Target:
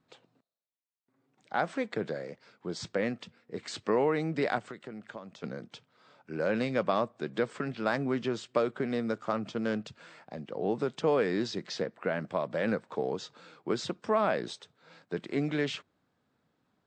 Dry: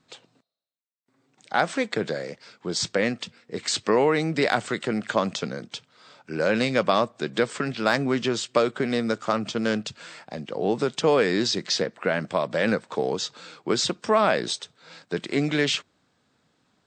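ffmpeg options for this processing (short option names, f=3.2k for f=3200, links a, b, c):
-filter_complex "[0:a]asettb=1/sr,asplit=3[a][b][c];[a]atrim=end=4.584[d];[b]atrim=start=4.58:end=5.44,asetpts=PTS-STARTPTS,afade=t=in:d=0.004:c=qsin,afade=t=out:st=0.856:d=0.004:c=qsin,acompressor=threshold=-33dB:ratio=8[e];[c]atrim=start=5.436[f];[d][e]acrossfade=d=0.004:c1=hsin:c2=qsin[g];[g][f]acrossfade=d=0.004:c1=qsin:c2=hsin,highshelf=f=3k:g=-12,volume=-6dB"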